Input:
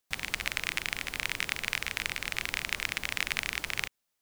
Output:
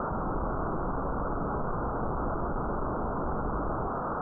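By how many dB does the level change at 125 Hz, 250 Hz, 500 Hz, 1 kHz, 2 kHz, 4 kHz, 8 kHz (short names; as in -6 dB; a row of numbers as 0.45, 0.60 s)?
+14.0 dB, +16.5 dB, +16.5 dB, +12.5 dB, -14.0 dB, under -40 dB, under -40 dB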